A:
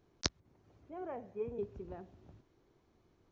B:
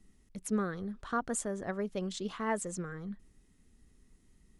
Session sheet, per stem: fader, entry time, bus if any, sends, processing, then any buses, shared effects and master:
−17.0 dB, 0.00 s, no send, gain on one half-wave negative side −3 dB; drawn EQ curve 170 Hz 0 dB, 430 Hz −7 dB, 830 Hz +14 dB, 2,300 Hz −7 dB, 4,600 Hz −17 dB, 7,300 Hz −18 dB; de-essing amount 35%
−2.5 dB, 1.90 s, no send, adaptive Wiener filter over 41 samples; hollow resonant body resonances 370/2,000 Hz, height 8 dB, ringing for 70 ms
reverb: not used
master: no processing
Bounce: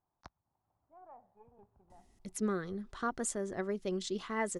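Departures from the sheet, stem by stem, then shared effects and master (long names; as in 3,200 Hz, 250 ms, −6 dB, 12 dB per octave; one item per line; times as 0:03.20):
stem B: missing adaptive Wiener filter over 41 samples
master: extra parametric band 5,000 Hz +4.5 dB 1.2 octaves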